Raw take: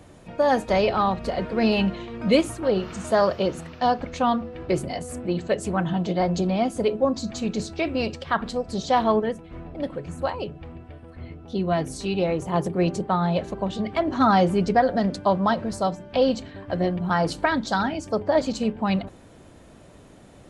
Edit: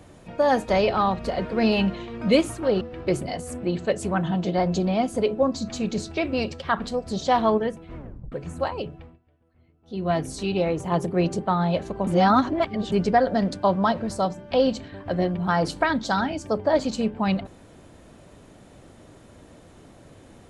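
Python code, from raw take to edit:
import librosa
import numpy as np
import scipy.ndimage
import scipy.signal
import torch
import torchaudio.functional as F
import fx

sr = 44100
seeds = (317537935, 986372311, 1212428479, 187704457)

y = fx.edit(x, sr, fx.cut(start_s=2.81, length_s=1.62),
    fx.tape_stop(start_s=9.58, length_s=0.36),
    fx.fade_down_up(start_s=10.52, length_s=1.21, db=-22.0, fade_s=0.29),
    fx.reverse_span(start_s=13.69, length_s=0.85), tone=tone)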